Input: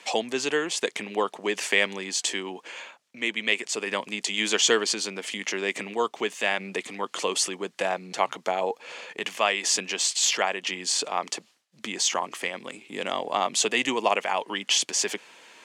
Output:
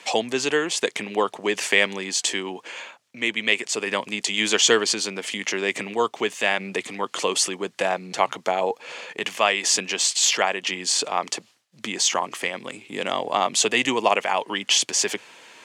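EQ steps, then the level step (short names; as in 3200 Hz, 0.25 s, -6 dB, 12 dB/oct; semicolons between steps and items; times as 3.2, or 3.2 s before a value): bell 110 Hz +9 dB 0.46 oct; +3.5 dB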